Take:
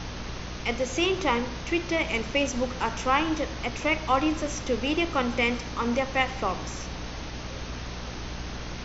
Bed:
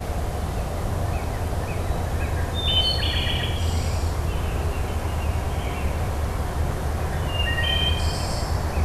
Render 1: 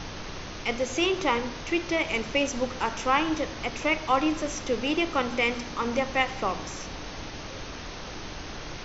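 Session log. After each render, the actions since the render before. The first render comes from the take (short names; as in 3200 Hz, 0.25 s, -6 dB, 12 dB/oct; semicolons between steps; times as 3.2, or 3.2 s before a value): notches 60/120/180/240 Hz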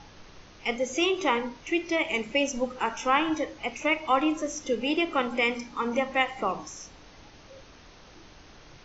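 noise print and reduce 13 dB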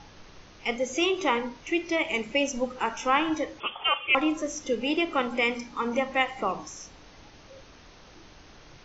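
3.6–4.15 inverted band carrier 3400 Hz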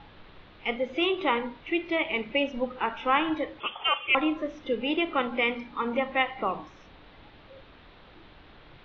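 elliptic low-pass 3800 Hz, stop band 70 dB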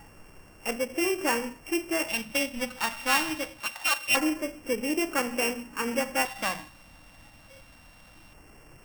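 sample sorter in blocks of 16 samples; LFO notch square 0.24 Hz 400–3800 Hz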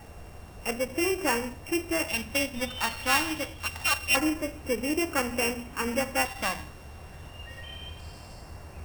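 add bed -20 dB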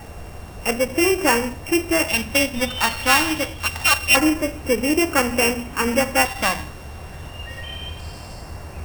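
gain +9 dB; limiter -2 dBFS, peak gain reduction 2 dB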